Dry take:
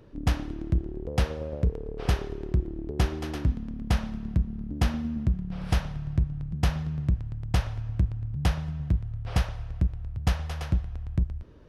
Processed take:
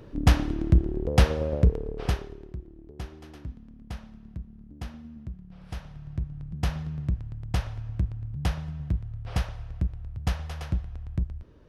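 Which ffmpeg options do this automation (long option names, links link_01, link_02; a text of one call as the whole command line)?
ffmpeg -i in.wav -af "volume=16.5dB,afade=type=out:start_time=1.57:duration=0.67:silence=0.266073,afade=type=out:start_time=2.24:duration=0.32:silence=0.421697,afade=type=in:start_time=5.7:duration=1.01:silence=0.298538" out.wav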